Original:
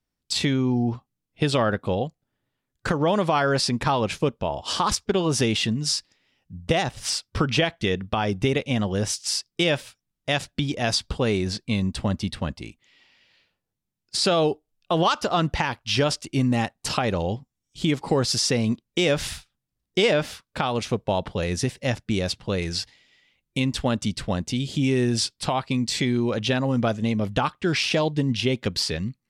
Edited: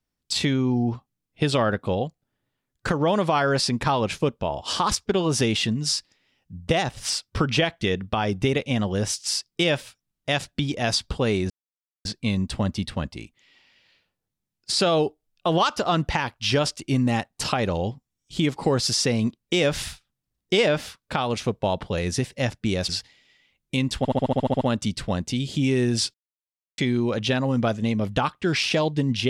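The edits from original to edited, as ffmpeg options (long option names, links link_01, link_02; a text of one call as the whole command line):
ffmpeg -i in.wav -filter_complex "[0:a]asplit=14[link_01][link_02][link_03][link_04][link_05][link_06][link_07][link_08][link_09][link_10][link_11][link_12][link_13][link_14];[link_01]atrim=end=11.5,asetpts=PTS-STARTPTS,afade=type=out:start_time=11.496:duration=0.004:curve=hsin,apad=pad_dur=0.55[link_15];[link_02]atrim=start=11.5:end=22.342,asetpts=PTS-STARTPTS,afade=type=in:duration=0.004:curve=hsin[link_16];[link_03]atrim=start=22.718:end=23.882[link_17];[link_04]atrim=start=23.808:end=23.882[link_18];[link_05]atrim=start=23.808:end=23.882[link_19];[link_06]atrim=start=23.808:end=23.882[link_20];[link_07]atrim=start=23.808:end=23.882[link_21];[link_08]atrim=start=23.808:end=23.882[link_22];[link_09]atrim=start=23.808:end=23.882[link_23];[link_10]atrim=start=23.808:end=23.882[link_24];[link_11]atrim=start=23.808:end=23.882[link_25];[link_12]atrim=start=23.808:end=25.34,asetpts=PTS-STARTPTS,afade=type=out:start_time=1.528:duration=0.004:curve=hsin[link_26];[link_13]atrim=start=25.34:end=25.98,asetpts=PTS-STARTPTS,volume=0[link_27];[link_14]atrim=start=25.98,asetpts=PTS-STARTPTS,afade=type=in:duration=0.004:curve=hsin[link_28];[link_15][link_16]concat=n=2:v=0:a=1[link_29];[link_29][link_17]acrossfade=duration=0.004:curve1=hsin:curve2=hsin[link_30];[link_30][link_18]acrossfade=duration=0.004:curve1=hsin:curve2=hsin[link_31];[link_31][link_19]acrossfade=duration=0.004:curve1=hsin:curve2=hsin[link_32];[link_32][link_20]acrossfade=duration=0.004:curve1=hsin:curve2=hsin[link_33];[link_33][link_21]acrossfade=duration=0.004:curve1=hsin:curve2=hsin[link_34];[link_34][link_22]acrossfade=duration=0.004:curve1=hsin:curve2=hsin[link_35];[link_35][link_23]acrossfade=duration=0.004:curve1=hsin:curve2=hsin[link_36];[link_36][link_24]acrossfade=duration=0.004:curve1=hsin:curve2=hsin[link_37];[link_37][link_25]acrossfade=duration=0.004:curve1=hsin:curve2=hsin[link_38];[link_26][link_27][link_28]concat=n=3:v=0:a=1[link_39];[link_38][link_39]acrossfade=duration=0.004:curve1=hsin:curve2=hsin" out.wav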